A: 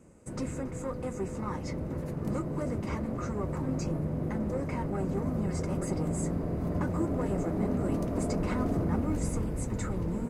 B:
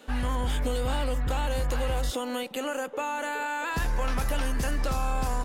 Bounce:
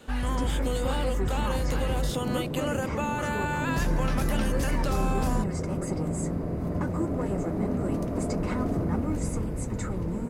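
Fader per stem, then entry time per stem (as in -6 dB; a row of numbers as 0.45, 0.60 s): +1.5, -0.5 dB; 0.00, 0.00 s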